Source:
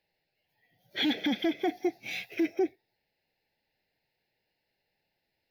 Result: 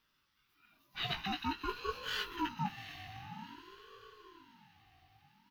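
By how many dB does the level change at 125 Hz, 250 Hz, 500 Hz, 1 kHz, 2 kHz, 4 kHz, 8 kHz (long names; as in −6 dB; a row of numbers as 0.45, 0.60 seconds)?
can't be measured, −12.5 dB, −13.5 dB, +2.0 dB, −4.0 dB, −4.5 dB, −3.0 dB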